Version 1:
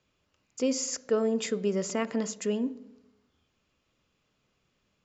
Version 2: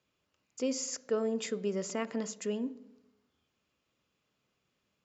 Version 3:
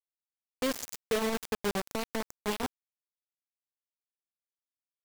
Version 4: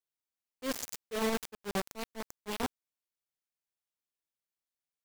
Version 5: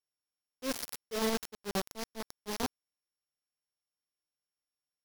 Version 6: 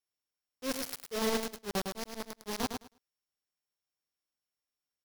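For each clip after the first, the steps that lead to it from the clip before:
high-pass 110 Hz 6 dB/octave; trim -4.5 dB
bit crusher 5-bit
slow attack 105 ms
sorted samples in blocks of 8 samples
feedback delay 106 ms, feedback 16%, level -6 dB

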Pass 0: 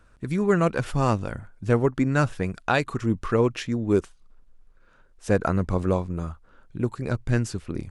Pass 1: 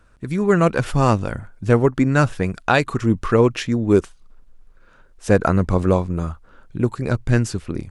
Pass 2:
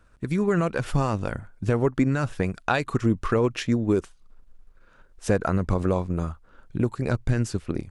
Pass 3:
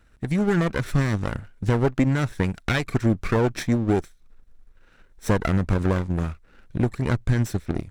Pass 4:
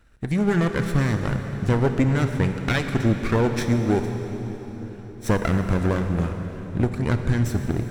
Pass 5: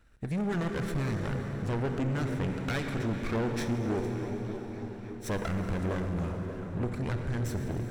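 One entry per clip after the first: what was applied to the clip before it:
level rider gain up to 4.5 dB; trim +2 dB
peak limiter -9.5 dBFS, peak gain reduction 8 dB; transient shaper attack +4 dB, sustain -2 dB; trim -4 dB
comb filter that takes the minimum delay 0.52 ms; trim +1.5 dB
reverberation RT60 4.5 s, pre-delay 23 ms, DRR 6 dB
saturation -21.5 dBFS, distortion -9 dB; repeats whose band climbs or falls 294 ms, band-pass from 290 Hz, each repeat 0.7 oct, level -5 dB; trim -5 dB

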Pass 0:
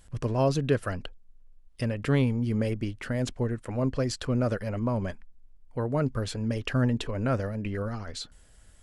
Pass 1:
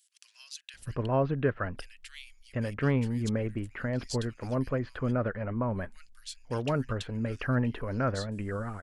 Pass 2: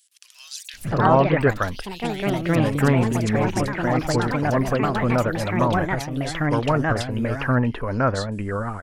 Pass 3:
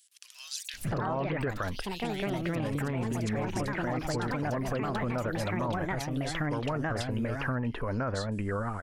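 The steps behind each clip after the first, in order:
dynamic bell 1.5 kHz, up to +5 dB, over -45 dBFS, Q 1; bands offset in time highs, lows 740 ms, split 2.7 kHz; trim -3 dB
dynamic bell 950 Hz, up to +6 dB, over -47 dBFS, Q 1.6; ever faster or slower copies 114 ms, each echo +3 st, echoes 3; trim +7 dB
peak limiter -16 dBFS, peak gain reduction 11 dB; compression 2.5:1, threshold -28 dBFS, peak gain reduction 6 dB; trim -2 dB

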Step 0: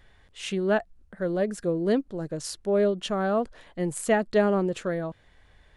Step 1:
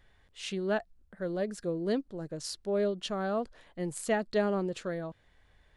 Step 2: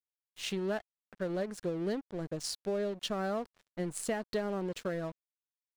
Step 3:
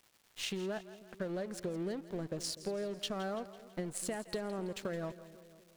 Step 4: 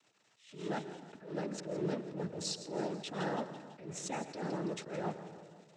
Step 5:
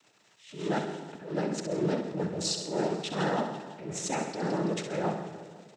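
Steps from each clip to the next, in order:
dynamic bell 4.5 kHz, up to +6 dB, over -53 dBFS, Q 1.6; trim -6.5 dB
compression 6:1, threshold -33 dBFS, peak gain reduction 10 dB; crossover distortion -50.5 dBFS; trim +3.5 dB
crackle 530 per s -56 dBFS; compression, threshold -38 dBFS, peak gain reduction 9.5 dB; two-band feedback delay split 550 Hz, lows 246 ms, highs 166 ms, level -15 dB; trim +3 dB
noise-vocoded speech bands 12; on a send at -14 dB: reverberation RT60 1.4 s, pre-delay 88 ms; on the sum: attacks held to a fixed rise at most 110 dB/s; trim +2.5 dB
feedback delay 65 ms, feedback 47%, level -8 dB; trim +7 dB

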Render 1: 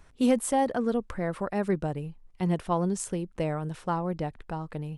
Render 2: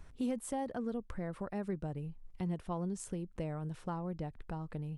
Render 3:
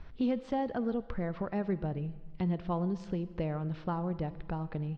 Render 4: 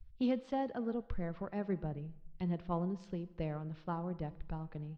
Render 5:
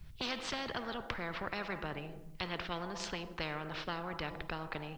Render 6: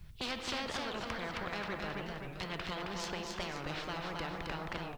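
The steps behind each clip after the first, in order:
bass shelf 260 Hz +7.5 dB; compression 2:1, threshold -39 dBFS, peak gain reduction 13 dB; trim -3.5 dB
steep low-pass 4.8 kHz 36 dB/octave; on a send at -16 dB: comb 6 ms, depth 65% + reverberation RT60 1.3 s, pre-delay 10 ms; on the sum: trim +5 dB
three bands expanded up and down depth 100%; trim -4.5 dB
spectrum-flattening compressor 4:1; trim +6 dB
single-diode clipper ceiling -34 dBFS; feedback delay 267 ms, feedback 48%, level -3.5 dB; warped record 45 rpm, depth 160 cents; trim +1 dB

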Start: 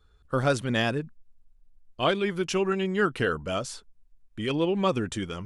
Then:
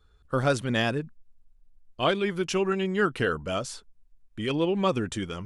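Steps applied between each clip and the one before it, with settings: no audible change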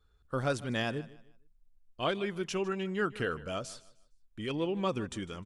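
feedback delay 153 ms, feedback 30%, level -19 dB; trim -7 dB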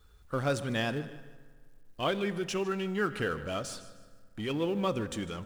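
companding laws mixed up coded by mu; reverberation RT60 1.8 s, pre-delay 3 ms, DRR 14 dB

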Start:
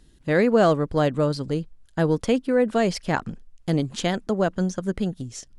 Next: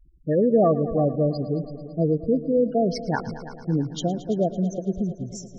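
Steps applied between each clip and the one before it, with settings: spectral gate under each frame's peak -10 dB strong; multi-head delay 111 ms, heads all three, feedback 54%, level -18 dB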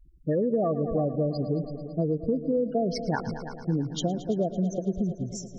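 compression, threshold -22 dBFS, peak gain reduction 8.5 dB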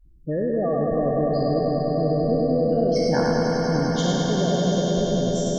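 spectral sustain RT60 2.56 s; on a send: echo with a slow build-up 99 ms, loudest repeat 5, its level -8 dB; on the sum: trim -1.5 dB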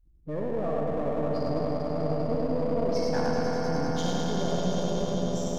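partial rectifier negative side -7 dB; on a send at -6.5 dB: reverberation, pre-delay 59 ms; on the sum: trim -5 dB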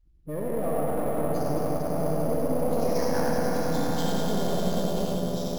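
ever faster or slower copies 192 ms, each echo +2 st, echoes 2, each echo -6 dB; careless resampling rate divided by 4×, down none, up hold

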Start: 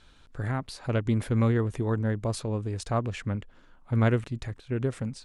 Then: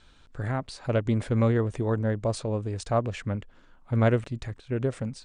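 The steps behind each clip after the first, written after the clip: steep low-pass 9.6 kHz 96 dB/octave; dynamic bell 590 Hz, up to +6 dB, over -43 dBFS, Q 2.1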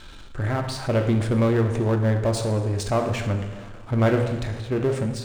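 two-slope reverb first 0.93 s, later 3 s, from -19 dB, DRR 4.5 dB; power-law waveshaper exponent 0.7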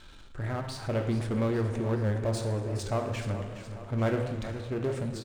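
feedback delay 421 ms, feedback 56%, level -11.5 dB; warped record 78 rpm, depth 100 cents; trim -8 dB

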